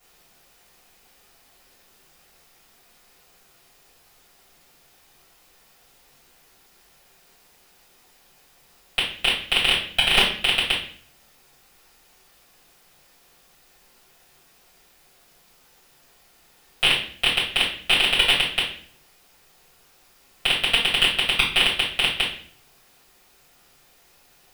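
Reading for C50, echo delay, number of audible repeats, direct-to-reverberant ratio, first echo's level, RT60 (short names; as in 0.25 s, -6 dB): 5.0 dB, none, none, -10.0 dB, none, 0.50 s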